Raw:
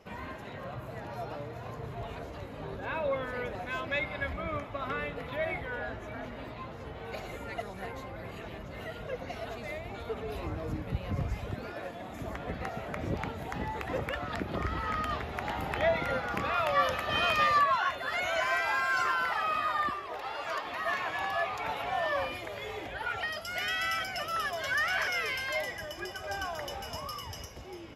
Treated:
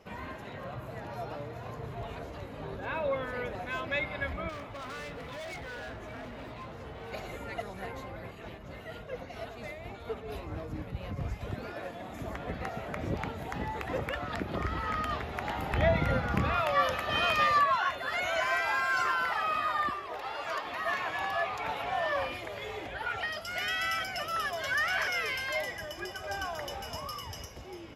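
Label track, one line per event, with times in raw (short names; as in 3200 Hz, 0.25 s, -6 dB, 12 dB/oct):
4.490000	7.120000	hard clip -39 dBFS
8.190000	11.410000	tremolo triangle 4.3 Hz, depth 55%
15.730000	16.600000	tone controls bass +12 dB, treble -1 dB
21.310000	23.590000	Doppler distortion depth 0.11 ms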